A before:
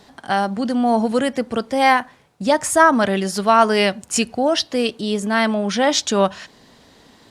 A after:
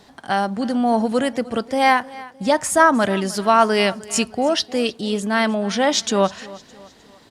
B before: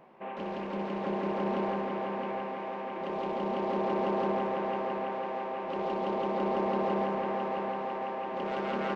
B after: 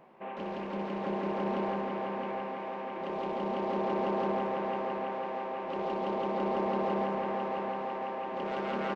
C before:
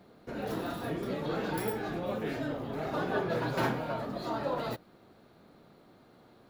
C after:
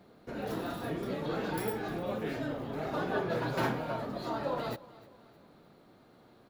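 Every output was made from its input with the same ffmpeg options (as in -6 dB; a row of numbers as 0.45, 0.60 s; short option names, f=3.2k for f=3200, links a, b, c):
-af "aecho=1:1:307|614|921:0.1|0.045|0.0202,volume=-1dB"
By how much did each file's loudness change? -1.0, -1.0, -1.0 LU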